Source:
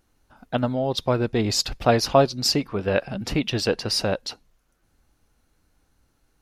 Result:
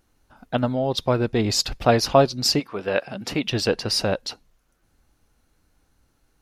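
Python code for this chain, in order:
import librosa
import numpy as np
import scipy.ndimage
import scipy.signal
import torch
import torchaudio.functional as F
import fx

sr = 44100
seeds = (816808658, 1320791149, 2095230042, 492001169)

y = fx.highpass(x, sr, hz=fx.line((2.59, 530.0), (3.44, 220.0)), slope=6, at=(2.59, 3.44), fade=0.02)
y = y * librosa.db_to_amplitude(1.0)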